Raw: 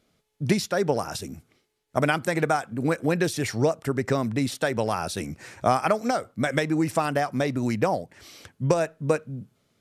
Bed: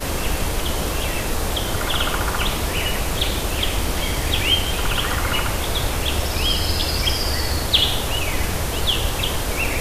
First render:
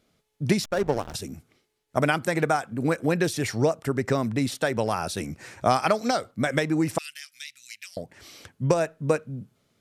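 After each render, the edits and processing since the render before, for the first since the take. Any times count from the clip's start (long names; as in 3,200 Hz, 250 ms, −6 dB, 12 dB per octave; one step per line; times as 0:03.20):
0:00.64–0:01.14: slack as between gear wheels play −24 dBFS
0:05.70–0:06.31: parametric band 4,100 Hz +10 dB 0.76 octaves
0:06.98–0:07.97: inverse Chebyshev high-pass filter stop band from 950 Hz, stop band 50 dB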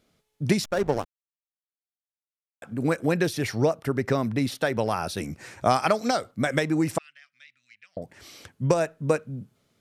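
0:01.05–0:02.62: silence
0:03.23–0:05.22: parametric band 7,600 Hz −8 dB 0.48 octaves
0:06.98–0:08.02: Bessel low-pass filter 1,200 Hz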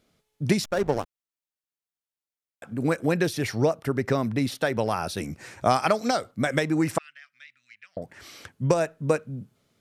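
0:06.77–0:08.49: parametric band 1,500 Hz +5.5 dB 1.2 octaves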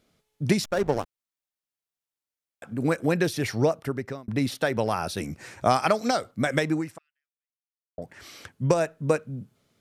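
0:03.75–0:04.28: fade out linear
0:06.73–0:07.98: fade out exponential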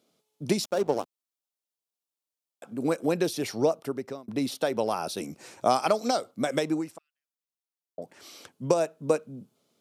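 high-pass filter 240 Hz 12 dB per octave
parametric band 1,800 Hz −10 dB 0.87 octaves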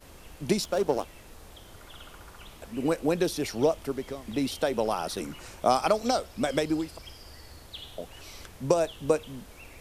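mix in bed −26 dB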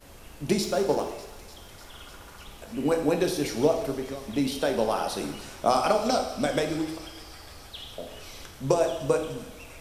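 delay with a high-pass on its return 299 ms, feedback 81%, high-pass 1,600 Hz, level −16 dB
dense smooth reverb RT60 1 s, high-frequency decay 1×, DRR 3.5 dB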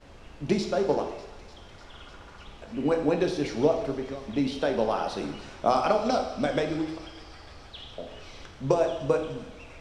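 high-frequency loss of the air 120 metres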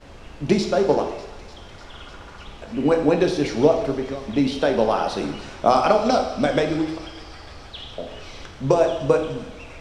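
level +6.5 dB
brickwall limiter −3 dBFS, peak gain reduction 1.5 dB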